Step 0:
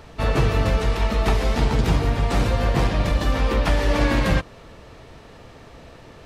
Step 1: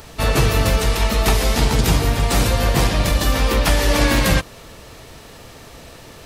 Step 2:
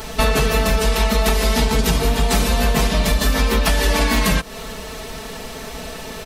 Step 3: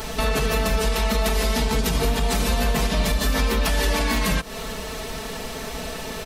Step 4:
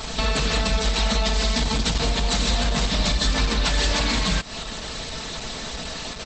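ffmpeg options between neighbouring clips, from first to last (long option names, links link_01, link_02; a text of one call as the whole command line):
ffmpeg -i in.wav -af "aemphasis=mode=production:type=75fm,volume=3.5dB" out.wav
ffmpeg -i in.wav -af "aecho=1:1:4.6:0.96,acompressor=threshold=-19dB:ratio=10,volume=6dB" out.wav
ffmpeg -i in.wav -af "alimiter=limit=-12dB:level=0:latency=1:release=145" out.wav
ffmpeg -i in.wav -af "equalizer=frequency=400:width_type=o:width=0.67:gain=-6,equalizer=frequency=4000:width_type=o:width=0.67:gain=8,equalizer=frequency=10000:width_type=o:width=0.67:gain=7" -ar 48000 -c:a libopus -b:a 12k out.opus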